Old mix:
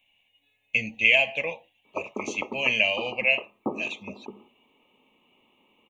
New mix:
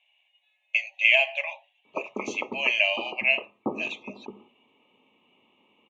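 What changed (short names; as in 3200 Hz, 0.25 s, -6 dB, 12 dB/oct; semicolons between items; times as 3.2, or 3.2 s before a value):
speech: add brick-wall FIR high-pass 550 Hz; master: add LPF 6200 Hz 12 dB/oct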